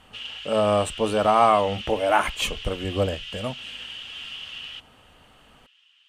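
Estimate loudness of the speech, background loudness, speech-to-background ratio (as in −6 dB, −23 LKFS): −23.0 LKFS, −35.5 LKFS, 12.5 dB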